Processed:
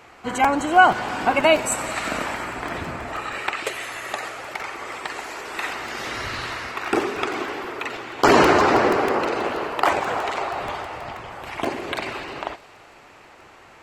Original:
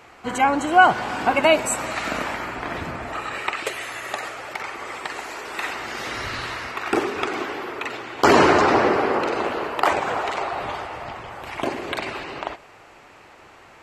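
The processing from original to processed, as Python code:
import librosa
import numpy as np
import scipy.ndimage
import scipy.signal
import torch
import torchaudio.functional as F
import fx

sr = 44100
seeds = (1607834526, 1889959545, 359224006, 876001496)

p1 = x + fx.echo_wet_highpass(x, sr, ms=87, feedback_pct=82, hz=4600.0, wet_db=-14.5, dry=0)
y = fx.buffer_crackle(p1, sr, first_s=0.44, period_s=0.16, block=128, kind='repeat')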